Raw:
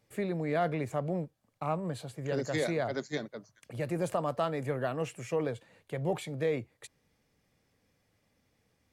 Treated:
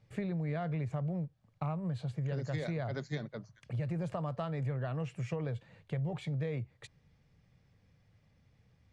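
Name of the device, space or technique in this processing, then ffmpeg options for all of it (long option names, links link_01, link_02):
jukebox: -af "lowpass=5000,lowshelf=frequency=200:width_type=q:width=1.5:gain=9,acompressor=threshold=-33dB:ratio=5"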